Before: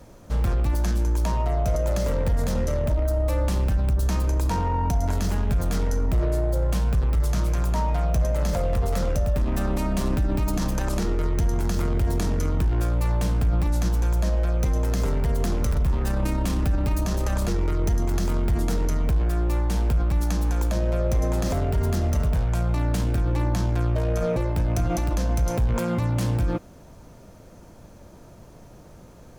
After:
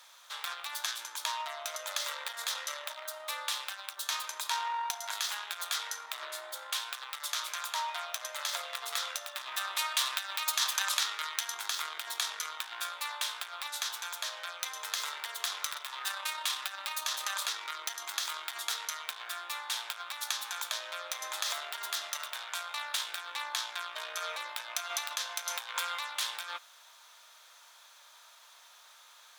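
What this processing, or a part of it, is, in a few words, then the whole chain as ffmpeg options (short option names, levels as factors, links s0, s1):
headphones lying on a table: -filter_complex "[0:a]highpass=f=1100:w=0.5412,highpass=f=1100:w=1.3066,equalizer=f=3600:t=o:w=0.4:g=12,asettb=1/sr,asplit=3[s0][s1][s2];[s0]atrim=end=9.754[s3];[s1]atrim=start=9.75:end=11.55,asetpts=PTS-STARTPTS,afade=t=in:d=0.004:c=qsin,afade=t=out:st=1.796:d=0.004:c=qsin,tiltshelf=f=670:g=-4[s4];[s2]atrim=start=11.546[s5];[s3][s4]acrossfade=d=0.004:c1=hsin:c2=qsin[s6];[s6][s5]acrossfade=d=0.004:c1=qsin:c2=hsin,volume=1.19"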